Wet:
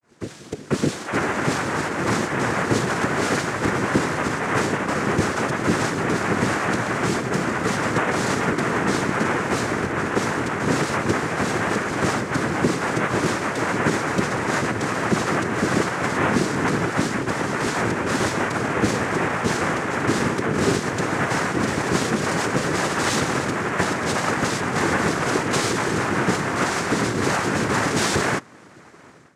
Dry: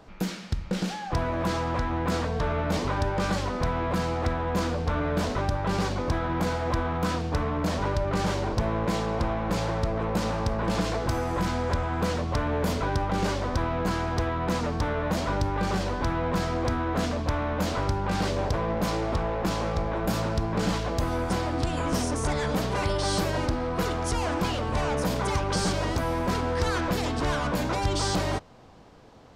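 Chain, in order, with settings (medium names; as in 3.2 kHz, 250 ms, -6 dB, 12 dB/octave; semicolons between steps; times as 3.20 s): granulator 135 ms, grains 28 per s, spray 11 ms; noise-vocoded speech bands 3; level rider gain up to 14.5 dB; trim -3.5 dB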